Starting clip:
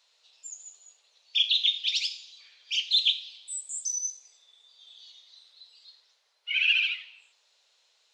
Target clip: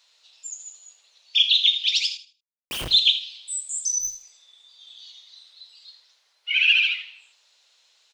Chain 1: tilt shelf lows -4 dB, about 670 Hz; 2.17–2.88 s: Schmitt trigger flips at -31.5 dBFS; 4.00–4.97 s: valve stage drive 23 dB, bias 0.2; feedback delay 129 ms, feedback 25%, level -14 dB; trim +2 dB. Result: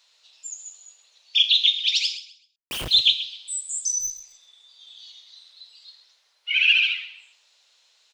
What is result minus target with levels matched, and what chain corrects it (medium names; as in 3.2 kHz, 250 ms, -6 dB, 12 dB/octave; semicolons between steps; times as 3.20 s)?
echo 51 ms late
tilt shelf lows -4 dB, about 670 Hz; 2.17–2.88 s: Schmitt trigger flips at -31.5 dBFS; 4.00–4.97 s: valve stage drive 23 dB, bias 0.2; feedback delay 78 ms, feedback 25%, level -14 dB; trim +2 dB